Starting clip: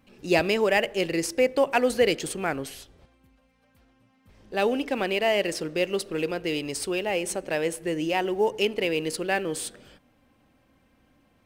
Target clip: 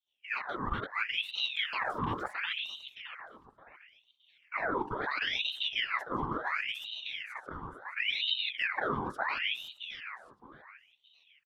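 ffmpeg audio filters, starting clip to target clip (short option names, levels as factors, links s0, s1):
-filter_complex "[0:a]asettb=1/sr,asplit=3[s0][s1][s2];[s0]atrim=end=1.344[s3];[s1]atrim=start=1.34:end=2.31,asetpts=PTS-STARTPTS,afade=t=in:d=0.004:c=qsin,afade=t=out:st=0.966:d=0.004:c=qsin,aeval=exprs='val(0)+0.5*0.0237*sgn(val(0))':c=same[s4];[s2]atrim=start=2.306[s5];[s3][s4]acrossfade=d=0.004:c1=hsin:c2=qsin[s6];[s6][s5]acrossfade=d=0.004:c1=qsin:c2=hsin,afwtdn=0.0447,asettb=1/sr,asplit=3[s7][s8][s9];[s7]atrim=end=6.844[s10];[s8]atrim=start=6.84:end=7.97,asetpts=PTS-STARTPTS,afade=t=in:d=0.004:c=qsin,afade=t=out:st=1.126:d=0.004:c=qsin,acompressor=threshold=0.0112:ratio=8[s11];[s9]atrim=start=7.966[s12];[s10][s11]acrossfade=d=0.004:c1=hsin:c2=qsin[s13];[s13][s12]acrossfade=d=0.004:c1=qsin:c2=hsin,highshelf=f=2100:g=-10,dynaudnorm=f=570:g=3:m=5.62,alimiter=limit=0.237:level=0:latency=1:release=26,afftfilt=real='hypot(re,im)*cos(2*PI*random(0))':imag='hypot(re,im)*sin(2*PI*random(1))':win_size=512:overlap=0.75,asuperstop=centerf=1700:order=8:qfactor=2.3,asplit=2[s14][s15];[s15]adelay=617,lowpass=f=4300:p=1,volume=0.316,asplit=2[s16][s17];[s17]adelay=617,lowpass=f=4300:p=1,volume=0.31,asplit=2[s18][s19];[s19]adelay=617,lowpass=f=4300:p=1,volume=0.31[s20];[s14][s16][s18][s20]amix=inputs=4:normalize=0,aeval=exprs='val(0)*sin(2*PI*2000*n/s+2000*0.7/0.72*sin(2*PI*0.72*n/s))':c=same,volume=0.562"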